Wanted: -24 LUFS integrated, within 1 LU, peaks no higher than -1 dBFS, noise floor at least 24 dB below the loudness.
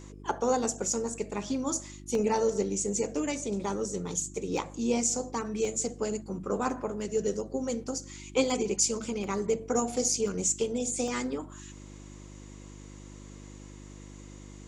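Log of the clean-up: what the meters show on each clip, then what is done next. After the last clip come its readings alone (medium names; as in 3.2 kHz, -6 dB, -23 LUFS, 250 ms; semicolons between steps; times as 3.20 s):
dropouts 8; longest dropout 1.5 ms; hum 50 Hz; highest harmonic 350 Hz; hum level -46 dBFS; loudness -30.5 LUFS; peak level -13.0 dBFS; loudness target -24.0 LUFS
-> interpolate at 2.15/3.64/4.57/5.65/8.50/9.24/10.28/11.08 s, 1.5 ms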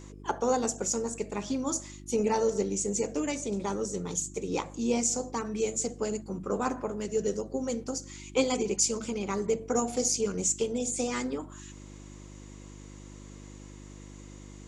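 dropouts 0; hum 50 Hz; highest harmonic 350 Hz; hum level -46 dBFS
-> de-hum 50 Hz, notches 7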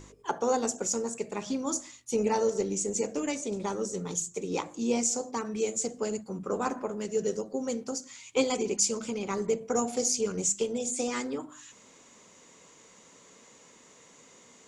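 hum not found; loudness -30.5 LUFS; peak level -13.0 dBFS; loudness target -24.0 LUFS
-> trim +6.5 dB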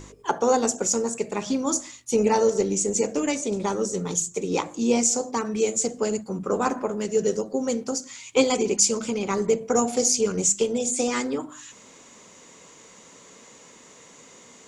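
loudness -24.0 LUFS; peak level -6.5 dBFS; noise floor -50 dBFS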